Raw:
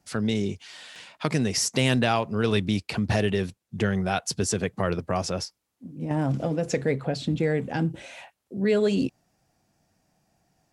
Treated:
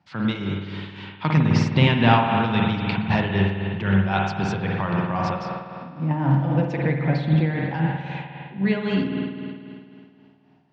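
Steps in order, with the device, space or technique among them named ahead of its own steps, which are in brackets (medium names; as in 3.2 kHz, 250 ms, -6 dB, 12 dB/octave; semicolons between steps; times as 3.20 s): combo amplifier with spring reverb and tremolo (spring tank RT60 2.4 s, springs 51 ms, chirp 75 ms, DRR -0.5 dB; tremolo 3.8 Hz, depth 50%; cabinet simulation 95–3800 Hz, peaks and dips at 97 Hz +3 dB, 160 Hz +5 dB, 250 Hz -4 dB, 430 Hz -10 dB, 640 Hz -5 dB, 940 Hz +8 dB); 1.37–2.27 s: bass shelf 430 Hz +6 dB; trim +3.5 dB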